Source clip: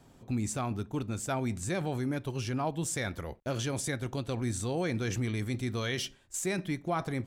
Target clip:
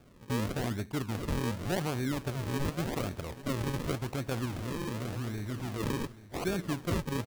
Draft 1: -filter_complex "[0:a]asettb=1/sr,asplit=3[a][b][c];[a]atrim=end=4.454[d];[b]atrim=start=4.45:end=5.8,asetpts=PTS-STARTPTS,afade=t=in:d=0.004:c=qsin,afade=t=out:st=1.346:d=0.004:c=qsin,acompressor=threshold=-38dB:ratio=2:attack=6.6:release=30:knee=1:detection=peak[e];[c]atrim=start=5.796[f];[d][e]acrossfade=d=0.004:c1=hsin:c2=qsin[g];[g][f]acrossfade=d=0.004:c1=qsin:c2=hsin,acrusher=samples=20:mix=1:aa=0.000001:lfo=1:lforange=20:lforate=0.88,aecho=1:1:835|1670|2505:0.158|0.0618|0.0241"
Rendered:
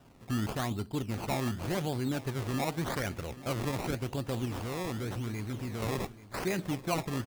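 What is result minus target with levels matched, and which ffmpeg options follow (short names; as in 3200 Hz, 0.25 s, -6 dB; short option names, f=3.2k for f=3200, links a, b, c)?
decimation with a swept rate: distortion -5 dB
-filter_complex "[0:a]asettb=1/sr,asplit=3[a][b][c];[a]atrim=end=4.454[d];[b]atrim=start=4.45:end=5.8,asetpts=PTS-STARTPTS,afade=t=in:d=0.004:c=qsin,afade=t=out:st=1.346:d=0.004:c=qsin,acompressor=threshold=-38dB:ratio=2:attack=6.6:release=30:knee=1:detection=peak[e];[c]atrim=start=5.796[f];[d][e]acrossfade=d=0.004:c1=hsin:c2=qsin[g];[g][f]acrossfade=d=0.004:c1=qsin:c2=hsin,acrusher=samples=43:mix=1:aa=0.000001:lfo=1:lforange=43:lforate=0.88,aecho=1:1:835|1670|2505:0.158|0.0618|0.0241"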